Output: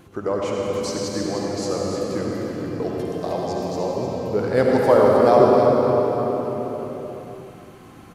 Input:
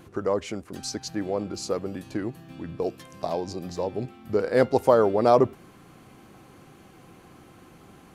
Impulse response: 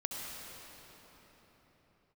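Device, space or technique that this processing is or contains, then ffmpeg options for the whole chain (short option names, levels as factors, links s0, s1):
cave: -filter_complex "[0:a]aecho=1:1:307:0.376[s0];[1:a]atrim=start_sample=2205[s1];[s0][s1]afir=irnorm=-1:irlink=0,volume=1.33"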